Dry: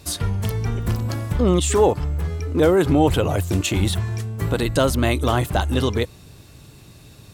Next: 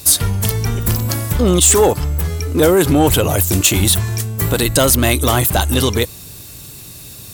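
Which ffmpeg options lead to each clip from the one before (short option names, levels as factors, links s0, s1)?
-af "aemphasis=mode=production:type=75fm,acontrast=75,volume=0.891"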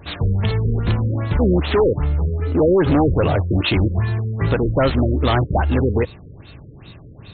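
-af "volume=3.76,asoftclip=hard,volume=0.266,afftfilt=real='re*lt(b*sr/1024,530*pow(4400/530,0.5+0.5*sin(2*PI*2.5*pts/sr)))':imag='im*lt(b*sr/1024,530*pow(4400/530,0.5+0.5*sin(2*PI*2.5*pts/sr)))':win_size=1024:overlap=0.75"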